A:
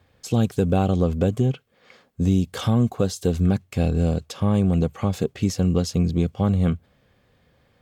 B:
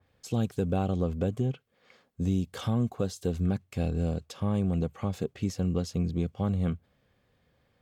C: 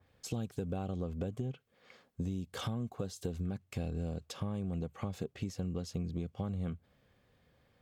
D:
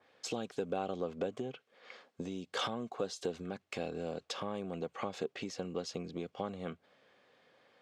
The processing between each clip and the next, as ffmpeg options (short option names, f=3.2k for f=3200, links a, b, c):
-af "adynamicequalizer=threshold=0.00708:dfrequency=3100:dqfactor=0.7:tfrequency=3100:tqfactor=0.7:attack=5:release=100:ratio=0.375:range=1.5:mode=cutabove:tftype=highshelf,volume=-8dB"
-af "acompressor=threshold=-34dB:ratio=6"
-af "highpass=390,lowpass=5.7k,volume=7dB"